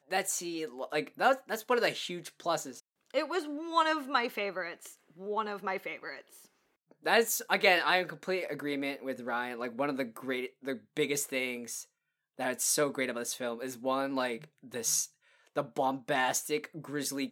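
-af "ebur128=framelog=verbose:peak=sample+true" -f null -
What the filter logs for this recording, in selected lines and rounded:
Integrated loudness:
  I:         -32.1 LUFS
  Threshold: -42.5 LUFS
Loudness range:
  LRA:         4.8 LU
  Threshold: -52.6 LUFS
  LRA low:   -34.9 LUFS
  LRA high:  -30.1 LUFS
Sample peak:
  Peak:       -9.6 dBFS
True peak:
  Peak:       -9.6 dBFS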